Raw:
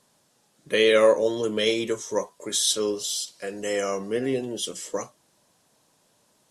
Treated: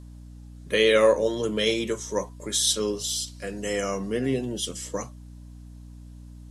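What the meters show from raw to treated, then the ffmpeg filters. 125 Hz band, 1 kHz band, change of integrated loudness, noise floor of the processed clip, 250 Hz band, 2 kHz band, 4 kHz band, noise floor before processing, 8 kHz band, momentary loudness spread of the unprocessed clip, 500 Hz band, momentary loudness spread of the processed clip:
+6.0 dB, -0.5 dB, -0.5 dB, -44 dBFS, +1.0 dB, 0.0 dB, 0.0 dB, -66 dBFS, 0.0 dB, 14 LU, -1.0 dB, 14 LU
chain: -af "highpass=120,asubboost=boost=3.5:cutoff=210,aeval=exprs='val(0)+0.00794*(sin(2*PI*60*n/s)+sin(2*PI*2*60*n/s)/2+sin(2*PI*3*60*n/s)/3+sin(2*PI*4*60*n/s)/4+sin(2*PI*5*60*n/s)/5)':c=same"

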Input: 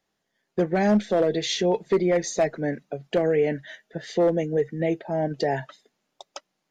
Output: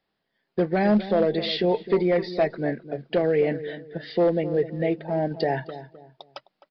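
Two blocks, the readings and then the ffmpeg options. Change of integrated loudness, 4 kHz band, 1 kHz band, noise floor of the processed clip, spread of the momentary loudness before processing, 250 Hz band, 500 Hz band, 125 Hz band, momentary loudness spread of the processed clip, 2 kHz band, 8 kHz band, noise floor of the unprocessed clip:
0.0 dB, 0.0 dB, 0.0 dB, -79 dBFS, 13 LU, +0.5 dB, 0.0 dB, +0.5 dB, 12 LU, 0.0 dB, under -25 dB, -79 dBFS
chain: -filter_complex "[0:a]asplit=2[s0][s1];[s1]adelay=259,lowpass=f=1000:p=1,volume=0.251,asplit=2[s2][s3];[s3]adelay=259,lowpass=f=1000:p=1,volume=0.34,asplit=2[s4][s5];[s5]adelay=259,lowpass=f=1000:p=1,volume=0.34[s6];[s0][s2][s4][s6]amix=inputs=4:normalize=0,acrusher=bits=8:mode=log:mix=0:aa=0.000001,aresample=11025,aresample=44100"

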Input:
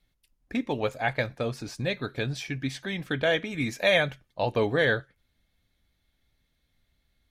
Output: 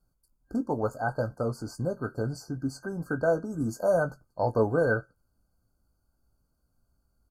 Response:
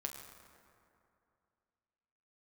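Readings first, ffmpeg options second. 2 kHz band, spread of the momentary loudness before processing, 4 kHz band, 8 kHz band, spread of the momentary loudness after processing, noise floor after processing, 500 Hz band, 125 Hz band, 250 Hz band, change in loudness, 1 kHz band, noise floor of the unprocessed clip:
-7.0 dB, 10 LU, under -15 dB, -2.5 dB, 8 LU, -75 dBFS, +0.5 dB, 0.0 dB, +0.5 dB, -1.5 dB, +0.5 dB, -75 dBFS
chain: -filter_complex "[0:a]equalizer=f=5500:w=5.6:g=-12.5,afftfilt=real='re*(1-between(b*sr/4096,1600,4300))':imag='im*(1-between(b*sr/4096,1600,4300))':win_size=4096:overlap=0.75,asplit=2[s0][s1];[s1]adelay=18,volume=0.335[s2];[s0][s2]amix=inputs=2:normalize=0"

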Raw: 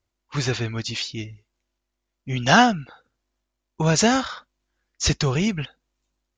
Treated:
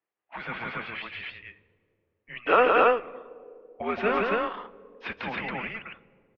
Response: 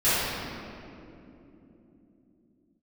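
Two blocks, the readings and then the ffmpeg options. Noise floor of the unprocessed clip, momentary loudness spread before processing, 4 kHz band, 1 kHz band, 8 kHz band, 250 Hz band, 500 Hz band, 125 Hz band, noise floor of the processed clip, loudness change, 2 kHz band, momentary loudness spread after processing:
-81 dBFS, 18 LU, -14.0 dB, -2.5 dB, under -40 dB, -12.5 dB, +1.0 dB, -21.0 dB, -81 dBFS, -4.5 dB, -4.0 dB, 23 LU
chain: -filter_complex "[0:a]highpass=f=560:t=q:w=0.5412,highpass=f=560:t=q:w=1.307,lowpass=f=2900:t=q:w=0.5176,lowpass=f=2900:t=q:w=0.7071,lowpass=f=2900:t=q:w=1.932,afreqshift=-240,aecho=1:1:169.1|277:0.708|0.891,asplit=2[s0][s1];[1:a]atrim=start_sample=2205,asetrate=74970,aresample=44100,lowshelf=f=230:g=8.5[s2];[s1][s2]afir=irnorm=-1:irlink=0,volume=0.0211[s3];[s0][s3]amix=inputs=2:normalize=0,volume=0.668"

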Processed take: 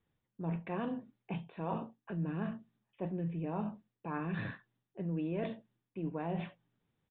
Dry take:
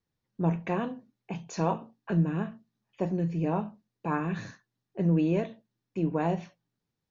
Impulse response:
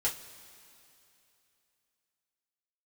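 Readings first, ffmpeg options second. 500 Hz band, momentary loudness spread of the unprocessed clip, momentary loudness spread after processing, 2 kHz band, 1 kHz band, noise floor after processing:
-8.5 dB, 13 LU, 10 LU, -5.5 dB, -8.5 dB, under -85 dBFS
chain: -af "areverse,acompressor=threshold=0.01:ratio=5,areverse,aresample=8000,aresample=44100,volume=1.68"

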